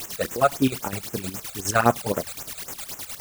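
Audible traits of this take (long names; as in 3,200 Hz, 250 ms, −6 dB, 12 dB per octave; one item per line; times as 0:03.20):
a quantiser's noise floor 6 bits, dither triangular
chopped level 9.7 Hz, depth 65%, duty 55%
phaser sweep stages 12, 3.8 Hz, lowest notch 290–4,400 Hz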